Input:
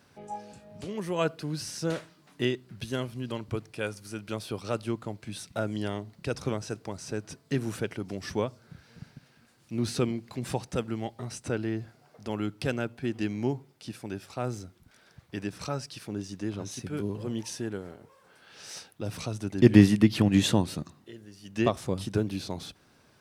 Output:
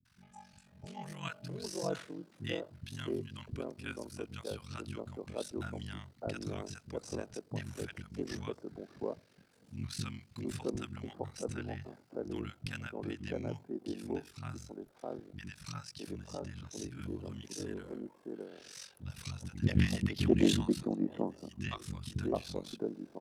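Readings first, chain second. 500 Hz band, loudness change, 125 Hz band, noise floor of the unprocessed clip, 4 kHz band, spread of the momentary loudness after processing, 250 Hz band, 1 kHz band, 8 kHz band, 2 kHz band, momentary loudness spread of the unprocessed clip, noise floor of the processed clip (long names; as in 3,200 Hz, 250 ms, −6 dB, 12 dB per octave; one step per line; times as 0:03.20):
−7.5 dB, −9.0 dB, −8.0 dB, −62 dBFS, −6.5 dB, 13 LU, −9.0 dB, −9.0 dB, −7.0 dB, −7.5 dB, 16 LU, −65 dBFS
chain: ring modulation 23 Hz
three-band delay without the direct sound lows, highs, mids 50/660 ms, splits 210/1,000 Hz
highs frequency-modulated by the lows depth 0.23 ms
level −3.5 dB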